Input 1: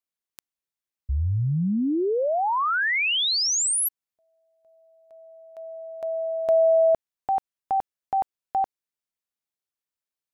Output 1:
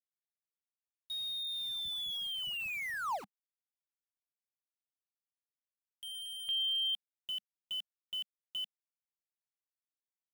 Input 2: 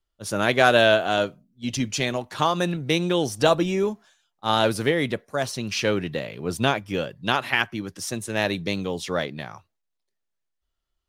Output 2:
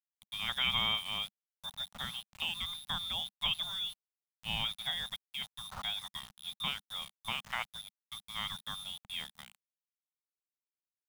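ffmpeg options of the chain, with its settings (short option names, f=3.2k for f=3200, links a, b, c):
-af "lowpass=f=3.2k:t=q:w=0.5098,lowpass=f=3.2k:t=q:w=0.6013,lowpass=f=3.2k:t=q:w=0.9,lowpass=f=3.2k:t=q:w=2.563,afreqshift=-3800,aeval=exprs='val(0)*gte(abs(val(0)),0.0355)':c=same,firequalizer=gain_entry='entry(200,0);entry(320,-25);entry(800,-8);entry(1500,-15)':delay=0.05:min_phase=1"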